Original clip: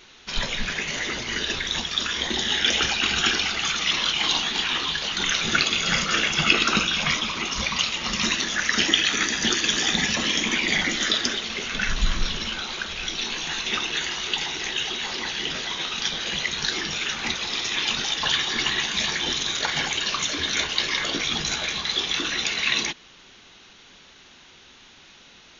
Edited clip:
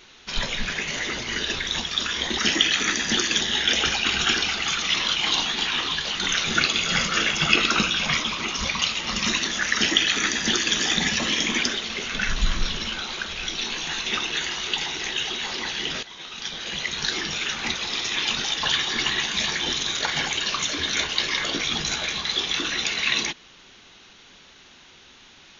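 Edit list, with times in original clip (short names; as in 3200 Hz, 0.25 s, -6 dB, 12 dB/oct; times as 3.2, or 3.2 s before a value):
8.71–9.74 copy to 2.38
10.6–11.23 cut
15.63–16.69 fade in, from -15 dB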